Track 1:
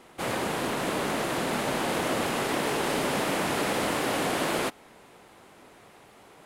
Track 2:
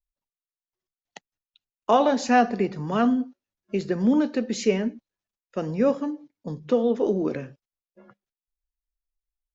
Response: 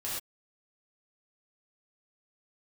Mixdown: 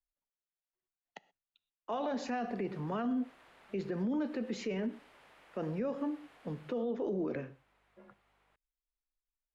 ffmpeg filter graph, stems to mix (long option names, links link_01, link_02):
-filter_complex "[0:a]equalizer=frequency=230:width=0.37:gain=-15,acompressor=threshold=-44dB:ratio=5,aeval=exprs='val(0)+0.000794*(sin(2*PI*50*n/s)+sin(2*PI*2*50*n/s)/2+sin(2*PI*3*50*n/s)/3+sin(2*PI*4*50*n/s)/4+sin(2*PI*5*50*n/s)/5)':channel_layout=same,adelay=2100,volume=-14dB[link_01];[1:a]volume=-5.5dB,asplit=3[link_02][link_03][link_04];[link_03]volume=-21dB[link_05];[link_04]apad=whole_len=377362[link_06];[link_01][link_06]sidechaincompress=threshold=-32dB:ratio=8:attack=16:release=112[link_07];[2:a]atrim=start_sample=2205[link_08];[link_05][link_08]afir=irnorm=-1:irlink=0[link_09];[link_07][link_02][link_09]amix=inputs=3:normalize=0,bass=frequency=250:gain=-3,treble=frequency=4000:gain=-14,acrossover=split=160|3000[link_10][link_11][link_12];[link_11]acompressor=threshold=-27dB:ratio=6[link_13];[link_10][link_13][link_12]amix=inputs=3:normalize=0,alimiter=level_in=3.5dB:limit=-24dB:level=0:latency=1:release=17,volume=-3.5dB"